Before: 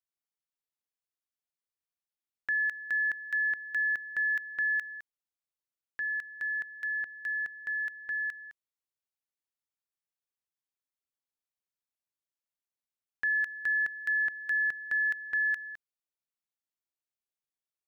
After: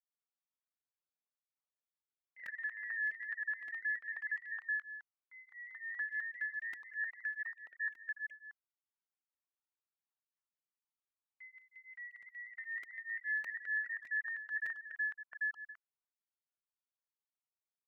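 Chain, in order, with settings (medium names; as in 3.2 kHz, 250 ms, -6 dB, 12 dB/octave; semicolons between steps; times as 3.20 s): random holes in the spectrogram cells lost 27%; peak limiter -27.5 dBFS, peak gain reduction 3.5 dB; band-pass filter 1.1 kHz, Q 1.1; ever faster or slower copies 92 ms, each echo +1 st, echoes 3, each echo -6 dB; crackling interface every 0.61 s, samples 128, repeat, from 0.63 s; cancelling through-zero flanger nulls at 0.34 Hz, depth 4.1 ms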